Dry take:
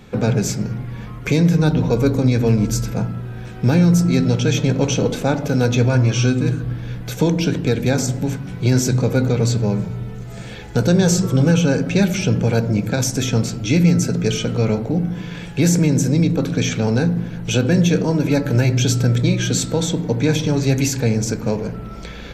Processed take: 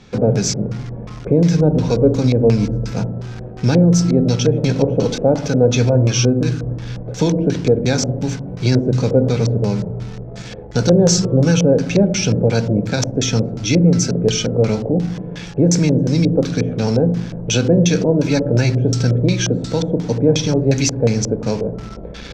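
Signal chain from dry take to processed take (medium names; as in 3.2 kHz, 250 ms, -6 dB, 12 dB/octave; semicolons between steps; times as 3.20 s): in parallel at -10 dB: bit crusher 5-bit; on the sum: LFO low-pass square 2.8 Hz 560–5600 Hz; trim -2 dB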